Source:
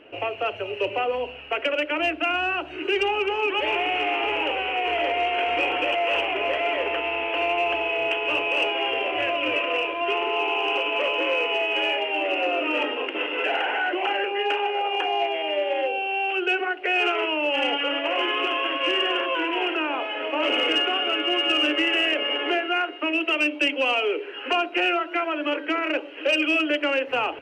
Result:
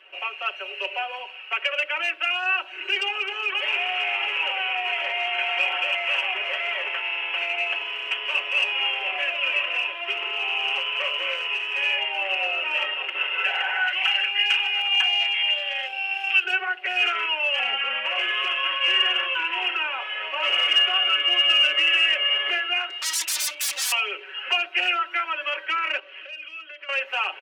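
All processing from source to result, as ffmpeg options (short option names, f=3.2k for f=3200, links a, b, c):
-filter_complex "[0:a]asettb=1/sr,asplit=3[a][b][c];[a]atrim=end=13.874[d];[b]atrim=start=13.87:end=16.44,asetpts=PTS-STARTPTS,afade=t=in:d=0.004:c=qsin,afade=t=out:st=2.566:d=0.004:c=qsin,highpass=f=1.5k:p=1,highshelf=f=2k:g=10[e];[c]atrim=start=16.436[f];[d][e]acrossfade=d=0.004:c1=hsin:c2=qsin[g];[g][f]acrossfade=d=0.004:c1=qsin:c2=hsin,asettb=1/sr,asplit=3[h][i][j];[h]atrim=end=17.594[k];[i]atrim=start=17.59:end=18.06,asetpts=PTS-STARTPTS,afade=t=in:d=0.004:c=qsin,afade=t=out:st=0.466:d=0.004:c=qsin,bandreject=f=1.1k:w=16,afreqshift=-44,acrossover=split=3900[l][m];[m]acompressor=threshold=-49dB:ratio=4:attack=1:release=60[n];[l][n]amix=inputs=2:normalize=0[o];[j]atrim=start=18.056[p];[k][o]acrossfade=d=0.004:c1=hsin:c2=qsin[q];[q][p]acrossfade=d=0.004:c1=qsin:c2=hsin,asettb=1/sr,asplit=3[r][s][t];[r]atrim=end=22.904[u];[s]atrim=start=22.9:end=23.92,asetpts=PTS-STARTPTS,afade=t=in:d=0.004:c=qsin,afade=t=out:st=1.016:d=0.004:c=qsin,aeval=exprs='0.0376*(abs(mod(val(0)/0.0376+3,4)-2)-1)':c=same,equalizer=f=6.9k:w=0.37:g=7.5[v];[t]atrim=start=23.916[w];[u][v]acrossfade=d=0.004:c1=hsin:c2=qsin[x];[x][w]acrossfade=d=0.004:c1=qsin:c2=hsin,asettb=1/sr,asplit=3[y][z][aa];[y]atrim=end=25.994[ab];[z]atrim=start=25.99:end=26.89,asetpts=PTS-STARTPTS,afade=t=in:d=0.004:c=qsin,afade=t=out:st=0.896:d=0.004:c=qsin,lowpass=4.8k,acompressor=threshold=-35dB:ratio=16:attack=3.2:release=140:knee=1:detection=peak,bandreject=f=870:w=5.7[ac];[aa]atrim=start=26.886[ad];[ab][ac]acrossfade=d=0.004:c1=hsin:c2=qsin[ae];[ae][ad]acrossfade=d=0.004:c1=qsin:c2=hsin,highpass=1.2k,aecho=1:1:5.3:0.97"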